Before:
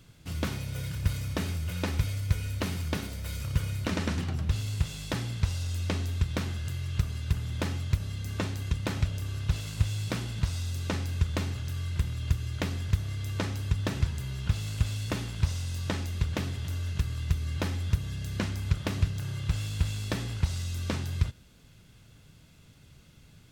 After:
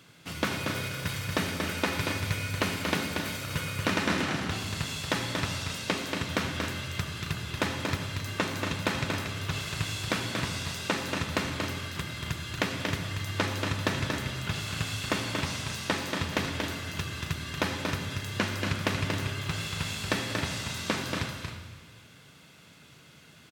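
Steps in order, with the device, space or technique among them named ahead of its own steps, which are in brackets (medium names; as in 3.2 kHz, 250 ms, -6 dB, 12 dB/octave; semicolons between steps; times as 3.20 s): stadium PA (high-pass 170 Hz 12 dB/octave; peaking EQ 1.6 kHz +6 dB 2.8 oct; loudspeakers at several distances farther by 80 m -5 dB, 92 m -11 dB; reverberation RT60 1.7 s, pre-delay 66 ms, DRR 7.5 dB); trim +1.5 dB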